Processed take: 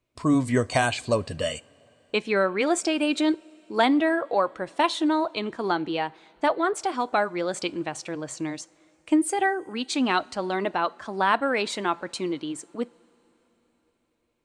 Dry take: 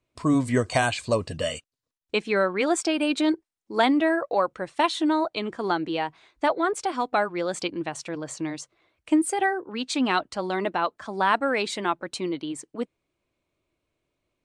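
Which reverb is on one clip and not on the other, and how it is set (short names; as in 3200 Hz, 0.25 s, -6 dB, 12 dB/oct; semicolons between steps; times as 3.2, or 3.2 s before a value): two-slope reverb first 0.38 s, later 4.4 s, from -18 dB, DRR 19.5 dB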